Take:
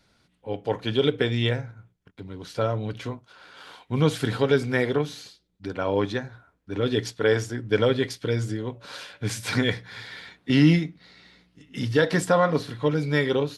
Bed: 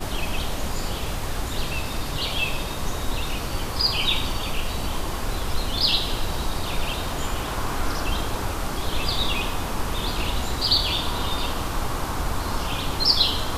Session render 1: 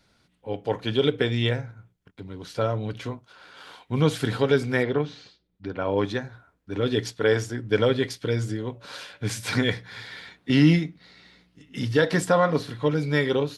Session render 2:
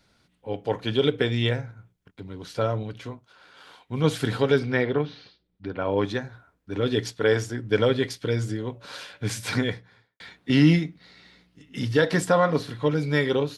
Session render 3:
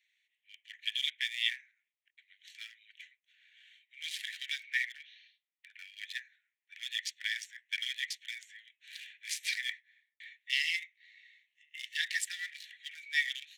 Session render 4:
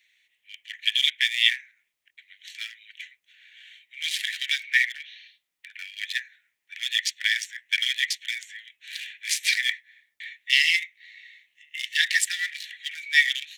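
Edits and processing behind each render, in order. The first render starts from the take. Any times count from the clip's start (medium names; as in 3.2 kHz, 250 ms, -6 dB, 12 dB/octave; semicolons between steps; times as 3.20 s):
4.83–5.98 s: distance through air 170 m
2.83–4.04 s: gain -4 dB; 4.59–6.02 s: Savitzky-Golay filter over 15 samples; 9.43–10.20 s: studio fade out
local Wiener filter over 9 samples; steep high-pass 1.8 kHz 96 dB/octave
trim +11.5 dB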